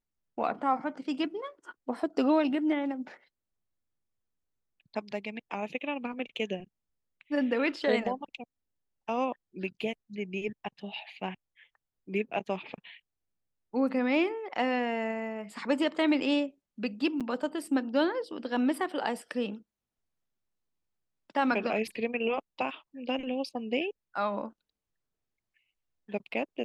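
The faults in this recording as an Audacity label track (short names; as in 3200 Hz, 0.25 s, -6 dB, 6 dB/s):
17.200000	17.210000	gap 7 ms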